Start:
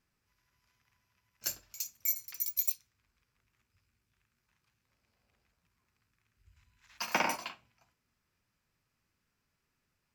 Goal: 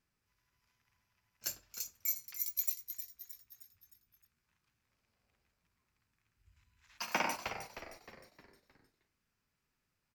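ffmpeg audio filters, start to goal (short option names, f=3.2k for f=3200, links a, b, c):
-filter_complex "[0:a]asplit=6[a][b][c][d][e][f];[b]adelay=310,afreqshift=-130,volume=-9.5dB[g];[c]adelay=620,afreqshift=-260,volume=-16.1dB[h];[d]adelay=930,afreqshift=-390,volume=-22.6dB[i];[e]adelay=1240,afreqshift=-520,volume=-29.2dB[j];[f]adelay=1550,afreqshift=-650,volume=-35.7dB[k];[a][g][h][i][j][k]amix=inputs=6:normalize=0,volume=-3.5dB"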